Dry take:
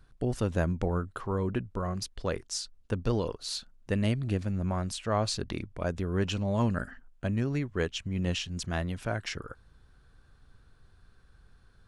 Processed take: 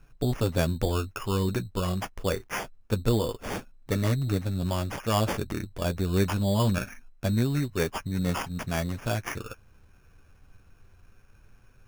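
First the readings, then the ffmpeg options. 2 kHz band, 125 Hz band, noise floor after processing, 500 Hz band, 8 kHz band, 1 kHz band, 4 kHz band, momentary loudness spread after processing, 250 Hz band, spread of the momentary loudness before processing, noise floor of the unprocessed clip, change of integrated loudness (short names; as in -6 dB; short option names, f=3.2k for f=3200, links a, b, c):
+3.0 dB, +3.5 dB, -57 dBFS, +3.0 dB, +1.5 dB, +3.5 dB, +0.5 dB, 9 LU, +3.0 dB, 7 LU, -61 dBFS, +3.0 dB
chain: -af "flanger=delay=6.9:depth=3.7:regen=-27:speed=0.24:shape=sinusoidal,acrusher=samples=11:mix=1:aa=0.000001,volume=6.5dB"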